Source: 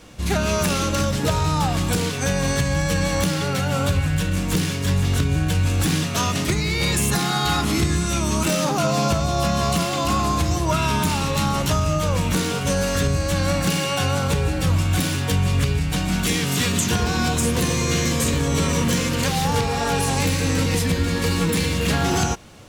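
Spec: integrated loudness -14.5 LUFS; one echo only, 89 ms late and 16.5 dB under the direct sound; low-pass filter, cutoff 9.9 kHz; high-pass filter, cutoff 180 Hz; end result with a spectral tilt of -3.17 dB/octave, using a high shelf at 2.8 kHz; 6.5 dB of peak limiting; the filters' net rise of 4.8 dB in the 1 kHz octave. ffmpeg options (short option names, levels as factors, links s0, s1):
-af "highpass=180,lowpass=9900,equalizer=f=1000:t=o:g=5.5,highshelf=f=2800:g=4,alimiter=limit=0.224:level=0:latency=1,aecho=1:1:89:0.15,volume=2.37"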